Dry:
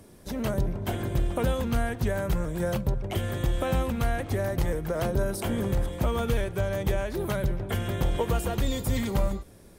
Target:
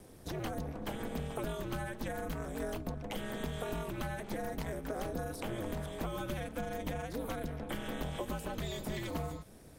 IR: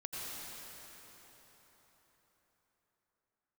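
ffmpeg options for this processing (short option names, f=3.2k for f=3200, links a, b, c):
-filter_complex "[0:a]aeval=exprs='val(0)*sin(2*PI*110*n/s)':c=same,acrossover=split=440|4800[a][b][c];[a]acompressor=threshold=-39dB:ratio=4[d];[b]acompressor=threshold=-40dB:ratio=4[e];[c]acompressor=threshold=-52dB:ratio=4[f];[d][e][f]amix=inputs=3:normalize=0"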